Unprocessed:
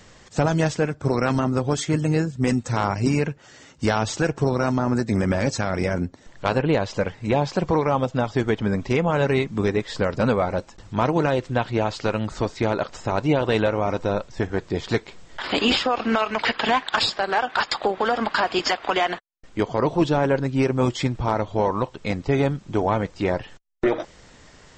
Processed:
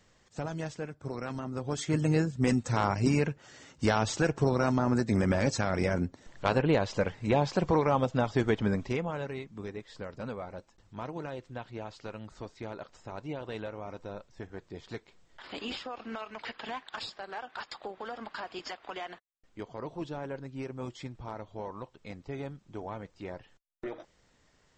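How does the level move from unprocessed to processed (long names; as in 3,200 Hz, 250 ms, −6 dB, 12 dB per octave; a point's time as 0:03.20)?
0:01.45 −15.5 dB
0:02.01 −5 dB
0:08.68 −5 dB
0:09.34 −18 dB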